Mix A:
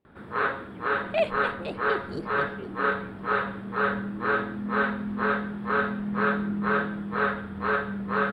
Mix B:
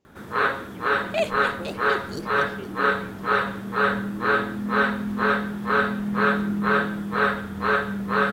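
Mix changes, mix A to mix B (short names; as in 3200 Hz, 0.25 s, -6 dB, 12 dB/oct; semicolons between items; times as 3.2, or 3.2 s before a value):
speech +4.0 dB; first sound +3.5 dB; master: remove running mean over 7 samples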